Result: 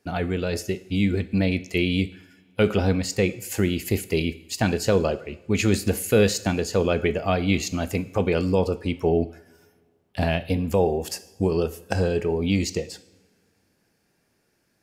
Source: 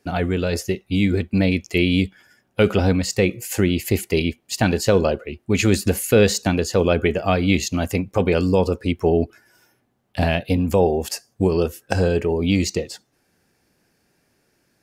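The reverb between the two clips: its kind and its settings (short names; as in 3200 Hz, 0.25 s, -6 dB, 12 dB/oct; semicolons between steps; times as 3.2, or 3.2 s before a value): two-slope reverb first 0.66 s, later 2.2 s, from -18 dB, DRR 12.5 dB; gain -4 dB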